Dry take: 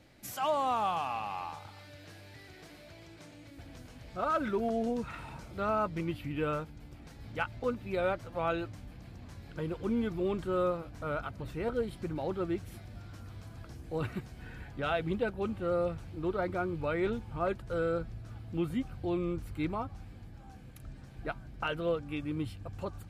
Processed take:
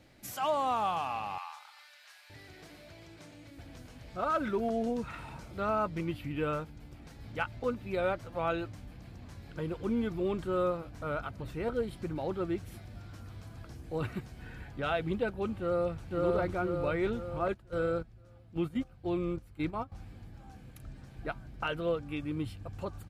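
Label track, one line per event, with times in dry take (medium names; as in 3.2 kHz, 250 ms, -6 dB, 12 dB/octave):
1.380000	2.300000	high-pass 940 Hz 24 dB/octave
15.590000	16.100000	echo throw 510 ms, feedback 55%, level -0.5 dB
17.480000	19.920000	gate -36 dBFS, range -12 dB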